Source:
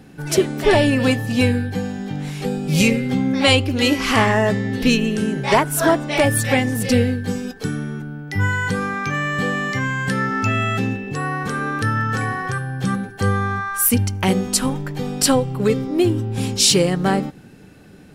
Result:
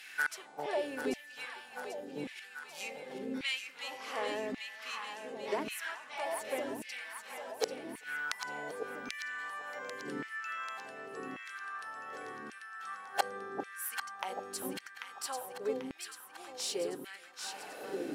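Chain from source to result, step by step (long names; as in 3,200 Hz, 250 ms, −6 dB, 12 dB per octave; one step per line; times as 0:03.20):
high-pass filter 100 Hz 6 dB per octave
mains-hum notches 60/120/180/240 Hz
gate with flip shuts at −21 dBFS, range −26 dB
tube saturation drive 21 dB, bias 0.7
on a send: delay that swaps between a low-pass and a high-pass 395 ms, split 820 Hz, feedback 77%, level −3.5 dB
on the sum: auto-filter high-pass saw down 0.88 Hz 270–2,400 Hz
level +7 dB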